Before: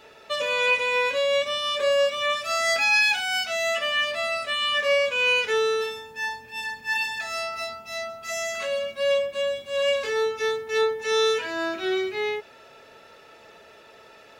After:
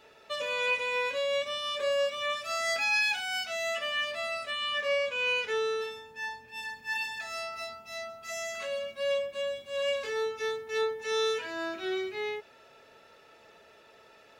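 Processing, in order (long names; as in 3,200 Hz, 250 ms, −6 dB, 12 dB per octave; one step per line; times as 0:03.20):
0:04.51–0:06.53: high-shelf EQ 7,500 Hz −6 dB
level −7 dB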